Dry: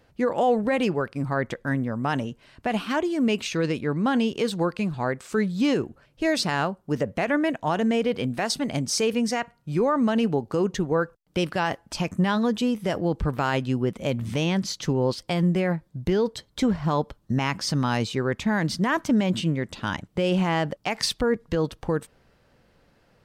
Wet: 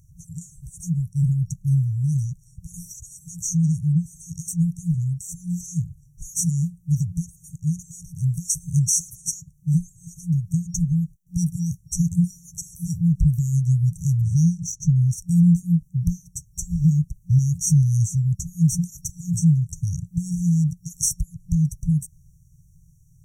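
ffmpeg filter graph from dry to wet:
ffmpeg -i in.wav -filter_complex "[0:a]asettb=1/sr,asplit=3[link_01][link_02][link_03];[link_01]atrim=end=14.214[link_04];[link_02]atrim=start=14.21:end=14.96,asetpts=PTS-STARTPTS,afade=type=in:duration=0.004:curve=qsin,afade=type=out:start_time=0.746:duration=0.004:curve=qsin,highshelf=frequency=7200:gain=-7,adynamicsmooth=sensitivity=2.5:basefreq=7800[link_05];[link_03]atrim=start=14.956[link_06];[link_04][link_05]acrossfade=duration=0.004:curve1=hsin:curve2=qsin[link_07];[link_07][link_06]acrossfade=duration=0.004:curve1=qsin:curve2=hsin,afftfilt=real='re*(1-between(b*sr/4096,180,5600))':imag='im*(1-between(b*sr/4096,180,5600))':win_size=4096:overlap=0.75,alimiter=level_in=20dB:limit=-1dB:release=50:level=0:latency=1,volume=-8.5dB" out.wav

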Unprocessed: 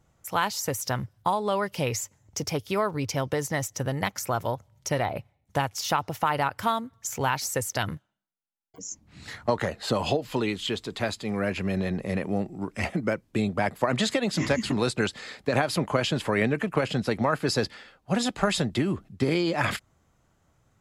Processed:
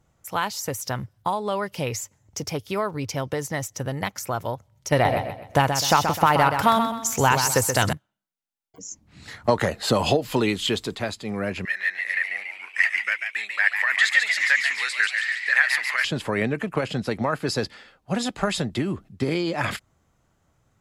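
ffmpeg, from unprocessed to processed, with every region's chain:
ffmpeg -i in.wav -filter_complex "[0:a]asettb=1/sr,asplit=3[link_01][link_02][link_03];[link_01]atrim=end=4.924[link_04];[link_02]atrim=start=4.92:end=7.93,asetpts=PTS-STARTPTS,afade=type=in:duration=0.004:curve=qsin,afade=type=out:start_time=3.006:duration=0.004:curve=qsin,acontrast=87,aecho=1:1:128|256|384|512:0.447|0.156|0.0547|0.0192,atrim=end_sample=132741[link_05];[link_03]atrim=start=7.926[link_06];[link_04][link_05]acrossfade=duration=0.004:curve1=hsin:curve2=qsin[link_07];[link_07][link_06]acrossfade=duration=0.004:curve1=qsin:curve2=hsin,asettb=1/sr,asplit=3[link_08][link_09][link_10];[link_08]atrim=end=9.444[link_11];[link_09]atrim=start=9.44:end=10.95,asetpts=PTS-STARTPTS,afade=type=in:duration=0.004:curve=qsin,afade=type=out:start_time=1.506:duration=0.004:curve=qsin,highshelf=frequency=9100:gain=7.5,acontrast=27[link_12];[link_10]atrim=start=10.946[link_13];[link_11][link_12]acrossfade=duration=0.004:curve1=hsin:curve2=qsin[link_14];[link_14][link_13]acrossfade=duration=0.004:curve1=qsin:curve2=hsin,asettb=1/sr,asplit=3[link_15][link_16][link_17];[link_15]atrim=end=11.654[link_18];[link_16]atrim=start=11.65:end=16.05,asetpts=PTS-STARTPTS,afade=type=in:duration=0.004:curve=qsin,afade=type=out:start_time=4.396:duration=0.004:curve=qsin,highpass=frequency=1800:width_type=q:width=8.7,asplit=8[link_19][link_20][link_21][link_22][link_23][link_24][link_25][link_26];[link_20]adelay=142,afreqshift=130,volume=-5.5dB[link_27];[link_21]adelay=284,afreqshift=260,volume=-10.5dB[link_28];[link_22]adelay=426,afreqshift=390,volume=-15.6dB[link_29];[link_23]adelay=568,afreqshift=520,volume=-20.6dB[link_30];[link_24]adelay=710,afreqshift=650,volume=-25.6dB[link_31];[link_25]adelay=852,afreqshift=780,volume=-30.7dB[link_32];[link_26]adelay=994,afreqshift=910,volume=-35.7dB[link_33];[link_19][link_27][link_28][link_29][link_30][link_31][link_32][link_33]amix=inputs=8:normalize=0,atrim=end_sample=194040[link_34];[link_17]atrim=start=16.046[link_35];[link_18][link_34]acrossfade=duration=0.004:curve1=hsin:curve2=qsin[link_36];[link_36][link_35]acrossfade=duration=0.004:curve1=qsin:curve2=hsin" out.wav

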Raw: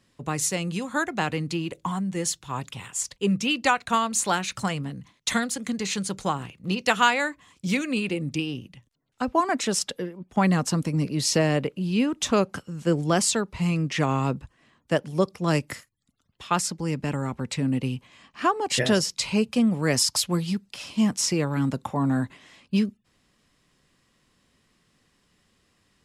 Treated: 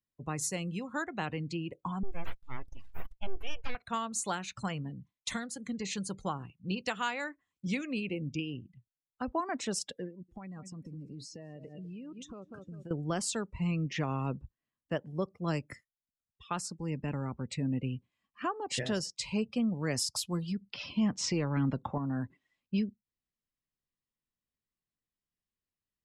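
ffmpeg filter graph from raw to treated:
ffmpeg -i in.wav -filter_complex "[0:a]asettb=1/sr,asplit=3[link_01][link_02][link_03];[link_01]atrim=end=2.034[link_04];[link_02]atrim=start=2.03:end=3.75,asetpts=PTS-STARTPTS,afade=type=in:duration=0.004:curve=qsin,afade=type=out:start_time=1.716:duration=0.004:curve=qsin,aeval=exprs='abs(val(0))':channel_layout=same,acrossover=split=3700[link_05][link_06];[link_06]acompressor=threshold=-40dB:ratio=4:attack=1:release=60[link_07];[link_05][link_07]amix=inputs=2:normalize=0,equalizer=frequency=280:width_type=o:width=1.8:gain=-5[link_08];[link_03]atrim=start=3.746[link_09];[link_04][link_08]acrossfade=duration=0.004:curve1=hsin:curve2=qsin[link_10];[link_10][link_09]acrossfade=duration=0.004:curve1=qsin:curve2=hsin,asettb=1/sr,asplit=3[link_11][link_12][link_13];[link_11]atrim=end=10.094[link_14];[link_12]atrim=start=10.09:end=12.91,asetpts=PTS-STARTPTS,afade=type=in:duration=0.004:curve=qsin,afade=type=out:start_time=2.816:duration=0.004:curve=qsin,highshelf=frequency=5400:gain=4,aecho=1:1:195|390|585:0.188|0.0697|0.0258,atrim=end_sample=124362,acompressor=threshold=-33dB:ratio=16:attack=3.2:release=140:knee=1:detection=peak[link_15];[link_13]atrim=start=12.906[link_16];[link_14][link_15]acrossfade=duration=0.004:curve1=hsin:curve2=qsin[link_17];[link_17][link_16]acrossfade=duration=0.004:curve1=qsin:curve2=hsin,asettb=1/sr,asplit=3[link_18][link_19][link_20];[link_18]atrim=end=20.614[link_21];[link_19]atrim=start=20.61:end=21.98,asetpts=PTS-STARTPTS,afade=type=in:duration=0.004:curve=qsin,afade=type=out:start_time=1.366:duration=0.004:curve=qsin,lowpass=5100,acontrast=82[link_22];[link_20]atrim=start=21.976[link_23];[link_21][link_22]acrossfade=duration=0.004:curve1=hsin:curve2=qsin[link_24];[link_24][link_23]acrossfade=duration=0.004:curve1=qsin:curve2=hsin,afftdn=noise_reduction=24:noise_floor=-39,lowshelf=frequency=68:gain=10.5,alimiter=limit=-13.5dB:level=0:latency=1:release=416,volume=-8.5dB" out.wav

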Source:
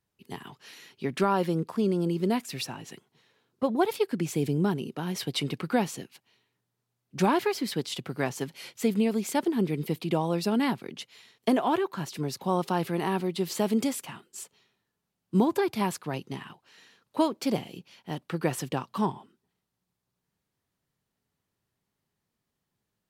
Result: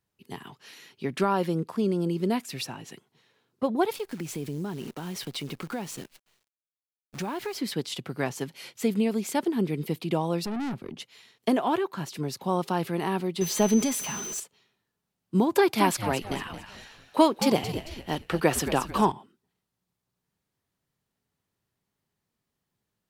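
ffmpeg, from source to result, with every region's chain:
ffmpeg -i in.wav -filter_complex "[0:a]asettb=1/sr,asplit=3[link_01][link_02][link_03];[link_01]atrim=end=3.974[link_04];[link_02]atrim=start=3.97:end=7.56,asetpts=PTS-STARTPTS,afade=type=in:duration=0.004:curve=qsin,afade=type=out:start_time=3.586:duration=0.004:curve=qsin,acrusher=bits=8:dc=4:mix=0:aa=0.000001,acompressor=threshold=-32dB:ratio=2.5:attack=3.2:release=140:knee=1:detection=peak[link_05];[link_03]atrim=start=7.556[link_06];[link_04][link_05]acrossfade=duration=0.004:curve1=hsin:curve2=qsin[link_07];[link_07][link_06]acrossfade=duration=0.004:curve1=qsin:curve2=hsin,asettb=1/sr,asplit=3[link_08][link_09][link_10];[link_08]atrim=end=10.454[link_11];[link_09]atrim=start=10.45:end=11,asetpts=PTS-STARTPTS,afade=type=in:duration=0.004:curve=qsin,afade=type=out:start_time=0.546:duration=0.004:curve=qsin,tiltshelf=frequency=1100:gain=5,bandreject=frequency=970:width=15,aeval=exprs='(tanh(28.2*val(0)+0.15)-tanh(0.15))/28.2':channel_layout=same[link_12];[link_10]atrim=start=10.996[link_13];[link_11][link_12]acrossfade=duration=0.004:curve1=hsin:curve2=qsin[link_14];[link_14][link_13]acrossfade=duration=0.004:curve1=qsin:curve2=hsin,asettb=1/sr,asplit=3[link_15][link_16][link_17];[link_15]atrim=end=13.414[link_18];[link_16]atrim=start=13.41:end=14.4,asetpts=PTS-STARTPTS,afade=type=in:duration=0.004:curve=qsin,afade=type=out:start_time=0.986:duration=0.004:curve=qsin,aeval=exprs='val(0)+0.5*0.0178*sgn(val(0))':channel_layout=same,aeval=exprs='val(0)+0.0158*sin(2*PI*6100*n/s)':channel_layout=same,aecho=1:1:4.8:0.46,atrim=end_sample=43659[link_19];[link_17]atrim=start=14.396[link_20];[link_18][link_19]acrossfade=duration=0.004:curve1=hsin:curve2=qsin[link_21];[link_21][link_20]acrossfade=duration=0.004:curve1=qsin:curve2=hsin,asettb=1/sr,asplit=3[link_22][link_23][link_24];[link_22]atrim=end=15.554[link_25];[link_23]atrim=start=15.55:end=19.12,asetpts=PTS-STARTPTS,afade=type=in:duration=0.004:curve=qsin,afade=type=out:start_time=3.566:duration=0.004:curve=qsin,highpass=frequency=300:poles=1,acontrast=90,asplit=5[link_26][link_27][link_28][link_29][link_30];[link_27]adelay=222,afreqshift=-100,volume=-10.5dB[link_31];[link_28]adelay=444,afreqshift=-200,volume=-18.7dB[link_32];[link_29]adelay=666,afreqshift=-300,volume=-26.9dB[link_33];[link_30]adelay=888,afreqshift=-400,volume=-35dB[link_34];[link_26][link_31][link_32][link_33][link_34]amix=inputs=5:normalize=0,atrim=end_sample=157437[link_35];[link_24]atrim=start=19.116[link_36];[link_25][link_35]acrossfade=duration=0.004:curve1=hsin:curve2=qsin[link_37];[link_37][link_36]acrossfade=duration=0.004:curve1=qsin:curve2=hsin" out.wav

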